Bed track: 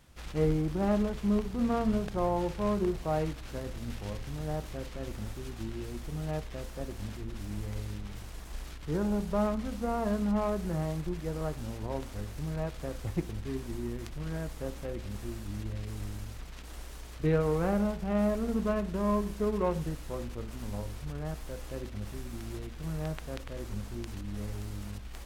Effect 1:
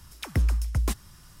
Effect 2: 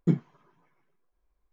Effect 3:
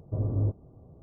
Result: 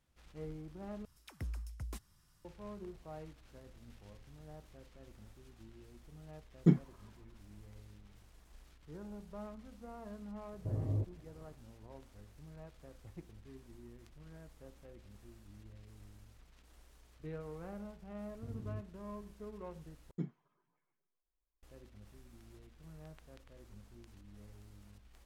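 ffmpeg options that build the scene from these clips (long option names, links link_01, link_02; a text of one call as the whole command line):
ffmpeg -i bed.wav -i cue0.wav -i cue1.wav -i cue2.wav -filter_complex "[2:a]asplit=2[link_01][link_02];[3:a]asplit=2[link_03][link_04];[0:a]volume=-18dB[link_05];[link_04]equalizer=frequency=600:width=1.5:gain=-12[link_06];[link_05]asplit=3[link_07][link_08][link_09];[link_07]atrim=end=1.054[link_10];[1:a]atrim=end=1.4,asetpts=PTS-STARTPTS,volume=-18dB[link_11];[link_08]atrim=start=2.446:end=20.114[link_12];[link_02]atrim=end=1.52,asetpts=PTS-STARTPTS,volume=-16dB[link_13];[link_09]atrim=start=21.626[link_14];[link_01]atrim=end=1.52,asetpts=PTS-STARTPTS,volume=-2dB,afade=type=in:duration=0.004:curve=hsin,afade=type=out:start_time=1.516:duration=0.004:curve=hsin,adelay=6590[link_15];[link_03]atrim=end=1.02,asetpts=PTS-STARTPTS,volume=-8dB,afade=type=in:duration=0.004:curve=hsin,afade=type=out:start_time=1.016:duration=0.004:curve=hsin,adelay=10530[link_16];[link_06]atrim=end=1.02,asetpts=PTS-STARTPTS,volume=-16.5dB,afade=type=in:duration=0.004:curve=hsin,afade=type=out:start_time=1.016:duration=0.004:curve=hsin,adelay=18300[link_17];[link_10][link_11]acrossfade=duration=0.004:curve1=hsin:curve2=hsin[link_18];[link_18][link_12]acrossfade=duration=0.004:curve1=hsin:curve2=hsin[link_19];[link_19][link_13]acrossfade=duration=0.004:curve1=hsin:curve2=hsin[link_20];[link_20][link_14]acrossfade=duration=0.004:curve1=hsin:curve2=hsin[link_21];[link_21][link_15][link_16][link_17]amix=inputs=4:normalize=0" out.wav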